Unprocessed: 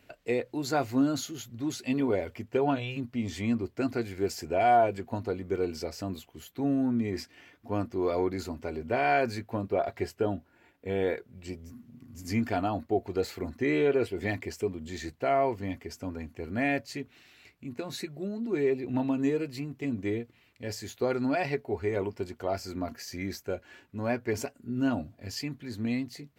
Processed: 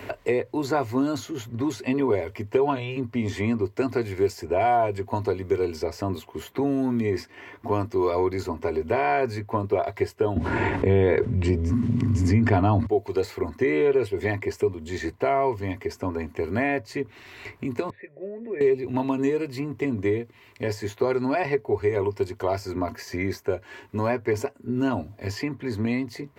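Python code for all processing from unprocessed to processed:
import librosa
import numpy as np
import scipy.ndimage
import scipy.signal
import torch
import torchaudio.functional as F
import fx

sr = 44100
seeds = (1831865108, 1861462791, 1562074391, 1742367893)

y = fx.chain(x, sr, fx.lowpass(hz=9700.0, slope=24),
    fx.bass_treble(bass_db=13, treble_db=-6),
    fx.env_flatten(amount_pct=70), at=(10.36, 12.87))
y = fx.chain(y, sr, fx.formant_cascade(vowel='e'),
    fx.peak_eq(hz=380.0, db=-5.0, octaves=2.3), at=(17.9, 18.61))
y = fx.graphic_eq_31(y, sr, hz=(100, 160, 400, 630, 1000, 2000), db=(8, -5, 9, 3, 12, 5))
y = fx.band_squash(y, sr, depth_pct=70)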